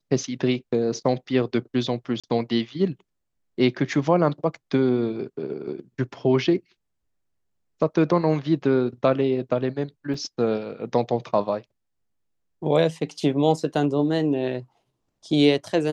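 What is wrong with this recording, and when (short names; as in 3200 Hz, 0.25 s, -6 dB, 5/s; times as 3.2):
2.2–2.24 gap 36 ms
10.14 gap 3.3 ms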